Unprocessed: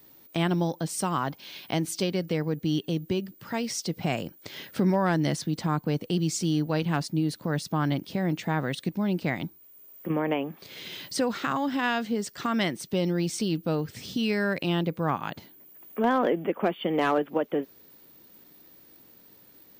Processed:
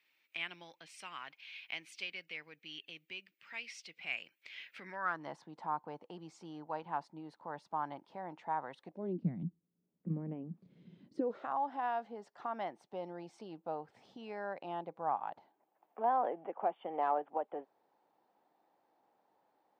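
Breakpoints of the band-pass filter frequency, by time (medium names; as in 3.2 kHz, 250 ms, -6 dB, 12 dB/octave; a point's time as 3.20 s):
band-pass filter, Q 4.6
4.74 s 2.4 kHz
5.32 s 890 Hz
8.85 s 890 Hz
9.26 s 180 Hz
10.97 s 180 Hz
11.50 s 800 Hz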